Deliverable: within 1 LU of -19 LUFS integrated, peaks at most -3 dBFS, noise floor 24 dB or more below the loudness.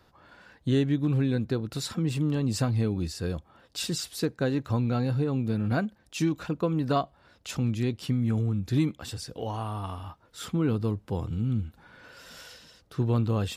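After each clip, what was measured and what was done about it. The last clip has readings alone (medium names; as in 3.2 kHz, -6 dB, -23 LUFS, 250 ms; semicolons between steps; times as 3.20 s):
loudness -29.0 LUFS; peak level -13.5 dBFS; loudness target -19.0 LUFS
-> trim +10 dB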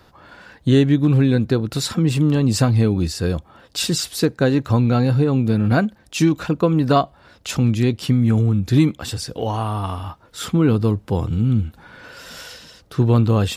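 loudness -19.0 LUFS; peak level -3.5 dBFS; noise floor -52 dBFS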